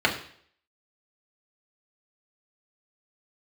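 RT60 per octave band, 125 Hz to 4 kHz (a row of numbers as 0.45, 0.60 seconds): 0.55, 0.55, 0.60, 0.55, 0.60, 0.60 seconds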